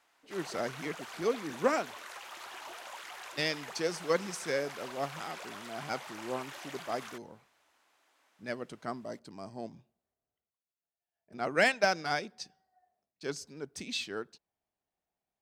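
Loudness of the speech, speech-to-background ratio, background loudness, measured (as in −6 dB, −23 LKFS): −35.0 LKFS, 10.0 dB, −45.0 LKFS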